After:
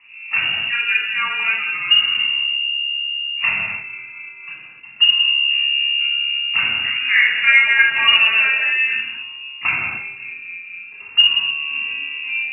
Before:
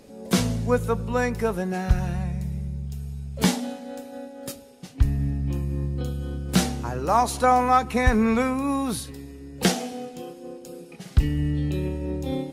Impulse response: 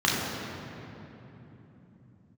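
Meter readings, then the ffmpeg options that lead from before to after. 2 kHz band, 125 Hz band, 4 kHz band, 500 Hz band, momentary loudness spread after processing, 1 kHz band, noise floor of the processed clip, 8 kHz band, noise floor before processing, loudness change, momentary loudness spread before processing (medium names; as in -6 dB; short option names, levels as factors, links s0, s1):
+19.5 dB, under -20 dB, +21.5 dB, under -15 dB, 19 LU, -6.0 dB, -38 dBFS, under -40 dB, -44 dBFS, +9.5 dB, 18 LU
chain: -filter_complex "[0:a]lowpass=f=2500:t=q:w=0.5098,lowpass=f=2500:t=q:w=0.6013,lowpass=f=2500:t=q:w=0.9,lowpass=f=2500:t=q:w=2.563,afreqshift=-2900,equalizer=f=500:w=0.84:g=-10[s0];[1:a]atrim=start_sample=2205,afade=t=out:st=0.36:d=0.01,atrim=end_sample=16317[s1];[s0][s1]afir=irnorm=-1:irlink=0,volume=0.398"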